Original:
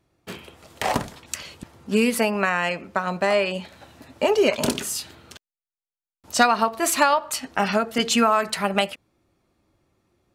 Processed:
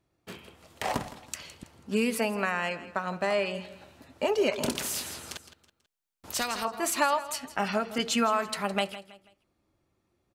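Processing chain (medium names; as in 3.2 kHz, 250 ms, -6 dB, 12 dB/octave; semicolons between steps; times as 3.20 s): feedback delay 163 ms, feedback 35%, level -15.5 dB; 4.75–6.65 s: spectrum-flattening compressor 2:1; trim -7 dB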